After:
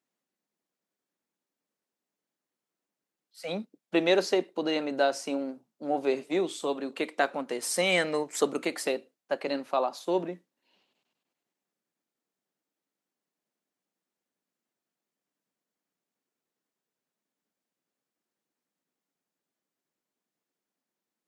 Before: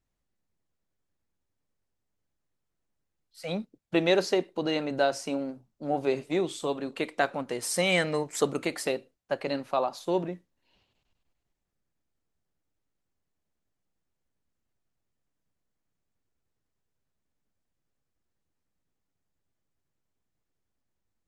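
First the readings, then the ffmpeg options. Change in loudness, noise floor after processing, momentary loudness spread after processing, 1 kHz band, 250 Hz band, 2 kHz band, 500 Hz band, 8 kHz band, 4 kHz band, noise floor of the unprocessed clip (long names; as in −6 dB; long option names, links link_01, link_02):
0.0 dB, below −85 dBFS, 12 LU, 0.0 dB, −0.5 dB, 0.0 dB, 0.0 dB, 0.0 dB, 0.0 dB, −82 dBFS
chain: -af "highpass=frequency=200:width=0.5412,highpass=frequency=200:width=1.3066"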